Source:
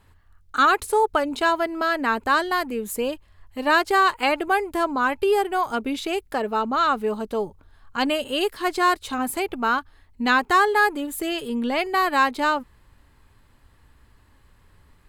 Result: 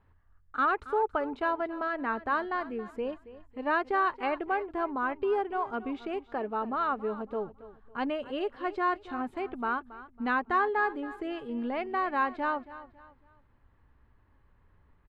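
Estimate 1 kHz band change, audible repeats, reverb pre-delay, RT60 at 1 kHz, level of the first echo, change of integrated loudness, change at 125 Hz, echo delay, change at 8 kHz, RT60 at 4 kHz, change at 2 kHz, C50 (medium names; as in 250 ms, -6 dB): -8.5 dB, 3, no reverb, no reverb, -16.0 dB, -9.0 dB, no reading, 276 ms, under -35 dB, no reverb, -10.5 dB, no reverb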